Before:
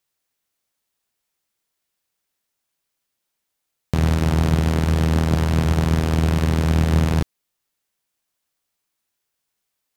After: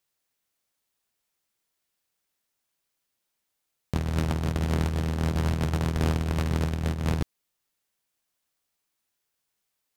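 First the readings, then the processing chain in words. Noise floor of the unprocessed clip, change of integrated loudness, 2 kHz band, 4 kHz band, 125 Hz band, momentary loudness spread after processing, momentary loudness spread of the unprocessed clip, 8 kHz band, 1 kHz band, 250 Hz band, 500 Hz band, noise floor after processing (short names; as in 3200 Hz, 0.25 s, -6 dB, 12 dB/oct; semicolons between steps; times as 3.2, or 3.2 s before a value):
-79 dBFS, -8.0 dB, -7.5 dB, -7.0 dB, -8.5 dB, 4 LU, 3 LU, -7.5 dB, -7.5 dB, -8.5 dB, -7.5 dB, -81 dBFS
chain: negative-ratio compressor -20 dBFS, ratio -0.5; gain -5 dB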